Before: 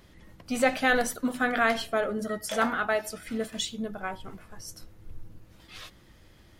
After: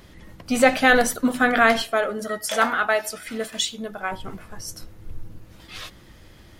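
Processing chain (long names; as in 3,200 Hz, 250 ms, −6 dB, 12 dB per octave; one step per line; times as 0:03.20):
0:01.82–0:04.12: low-shelf EQ 330 Hz −11.5 dB
level +7.5 dB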